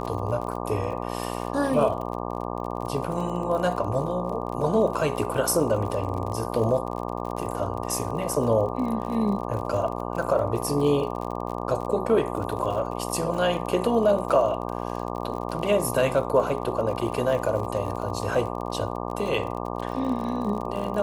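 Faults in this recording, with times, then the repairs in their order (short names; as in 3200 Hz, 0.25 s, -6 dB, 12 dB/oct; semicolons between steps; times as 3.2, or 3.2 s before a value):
buzz 60 Hz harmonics 20 -31 dBFS
crackle 41/s -32 dBFS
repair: de-click; de-hum 60 Hz, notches 20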